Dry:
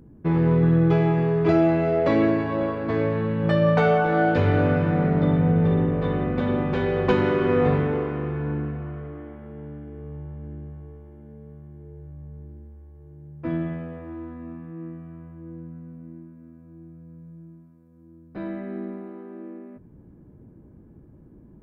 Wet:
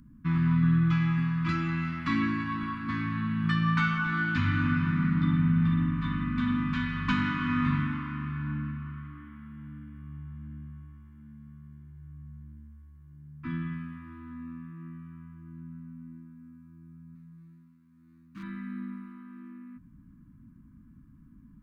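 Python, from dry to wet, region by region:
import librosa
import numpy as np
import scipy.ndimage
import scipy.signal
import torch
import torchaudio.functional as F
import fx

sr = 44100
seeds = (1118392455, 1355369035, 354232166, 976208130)

y = fx.chain(x, sr, fx.median_filter(points=41),
    fx.highpass(hz=140.0, slope=6), at=(17.15, 18.43))
y = scipy.signal.sosfilt(scipy.signal.ellip(3, 1.0, 40, [260.0, 1100.0], 'bandstop', fs=sr, output='sos'), y)
y = fx.peak_eq(y, sr, hz=95.0, db=-6.0, octaves=1.7)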